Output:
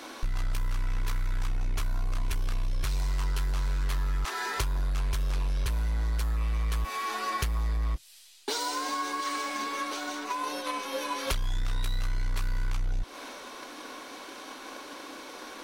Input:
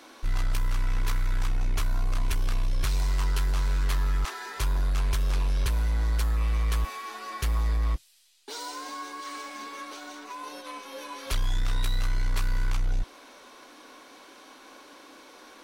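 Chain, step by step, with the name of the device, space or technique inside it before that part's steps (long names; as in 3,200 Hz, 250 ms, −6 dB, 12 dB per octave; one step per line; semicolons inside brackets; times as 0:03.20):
drum-bus smash (transient designer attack +6 dB, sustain +2 dB; downward compressor, threshold −32 dBFS, peak gain reduction 13 dB; soft clipping −26 dBFS, distortion −27 dB)
level +6.5 dB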